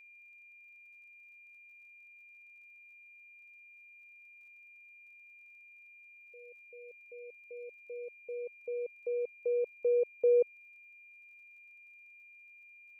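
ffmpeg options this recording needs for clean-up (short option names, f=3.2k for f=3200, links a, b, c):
-af "adeclick=t=4,bandreject=f=2.4k:w=30"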